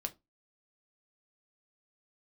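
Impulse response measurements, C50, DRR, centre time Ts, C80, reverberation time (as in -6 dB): 21.0 dB, 6.0 dB, 4 ms, 30.5 dB, 0.20 s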